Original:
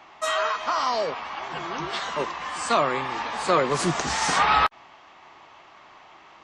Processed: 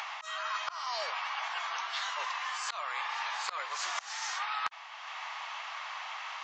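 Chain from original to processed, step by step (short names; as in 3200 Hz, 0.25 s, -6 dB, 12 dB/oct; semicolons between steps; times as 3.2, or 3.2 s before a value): Bessel high-pass 1200 Hz, order 6; in parallel at -1 dB: upward compressor, threshold -30 dBFS; on the sum: auto swell 0.274 s; reverse; compressor 12:1, threshold -32 dBFS, peak gain reduction 18.5 dB; reverse; downsampling 16000 Hz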